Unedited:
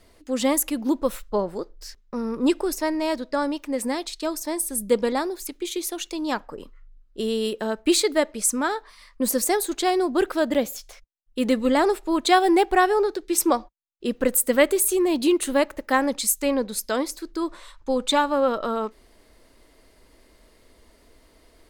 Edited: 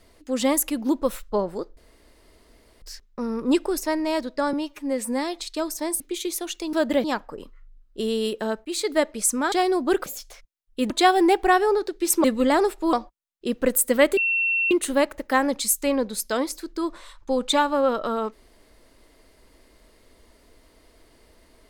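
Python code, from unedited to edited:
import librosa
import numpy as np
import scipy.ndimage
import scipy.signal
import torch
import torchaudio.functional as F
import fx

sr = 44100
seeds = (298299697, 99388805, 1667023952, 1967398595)

y = fx.edit(x, sr, fx.insert_room_tone(at_s=1.77, length_s=1.05),
    fx.stretch_span(start_s=3.48, length_s=0.58, factor=1.5),
    fx.cut(start_s=4.66, length_s=0.85),
    fx.fade_in_from(start_s=7.85, length_s=0.33, floor_db=-20.0),
    fx.cut(start_s=8.72, length_s=1.08),
    fx.move(start_s=10.34, length_s=0.31, to_s=6.24),
    fx.move(start_s=11.49, length_s=0.69, to_s=13.52),
    fx.bleep(start_s=14.76, length_s=0.54, hz=2710.0, db=-19.5), tone=tone)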